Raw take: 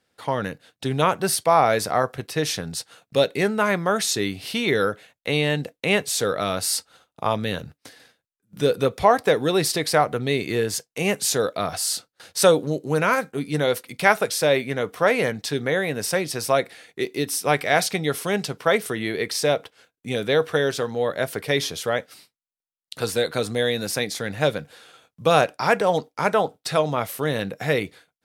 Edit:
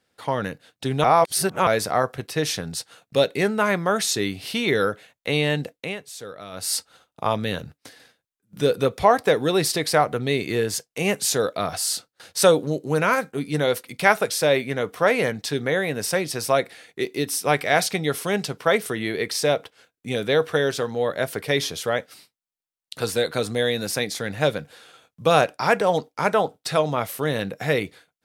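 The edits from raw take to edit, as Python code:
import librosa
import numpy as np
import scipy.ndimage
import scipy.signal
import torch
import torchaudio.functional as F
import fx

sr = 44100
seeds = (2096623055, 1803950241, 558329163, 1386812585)

y = fx.edit(x, sr, fx.reverse_span(start_s=1.04, length_s=0.63),
    fx.fade_down_up(start_s=5.71, length_s=1.04, db=-14.0, fade_s=0.24), tone=tone)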